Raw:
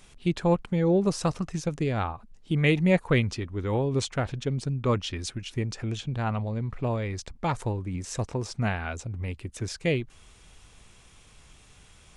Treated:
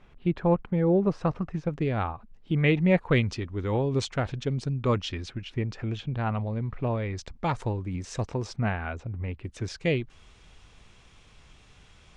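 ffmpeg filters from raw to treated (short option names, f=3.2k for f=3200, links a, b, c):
-af "asetnsamples=n=441:p=0,asendcmd='1.74 lowpass f 3100;3.11 lowpass f 6200;5.21 lowpass f 3300;7.17 lowpass f 5500;8.56 lowpass f 2400;9.44 lowpass f 5200',lowpass=1.9k"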